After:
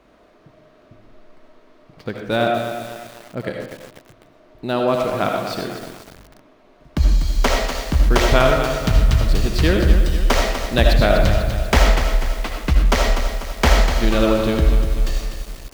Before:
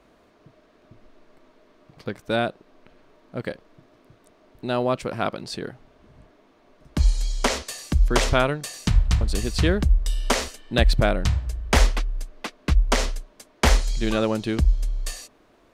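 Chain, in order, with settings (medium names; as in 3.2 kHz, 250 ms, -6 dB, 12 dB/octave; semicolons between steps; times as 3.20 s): median filter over 5 samples; reverberation RT60 0.60 s, pre-delay 40 ms, DRR 2 dB; bit-crushed delay 246 ms, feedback 55%, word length 6-bit, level -8 dB; trim +3 dB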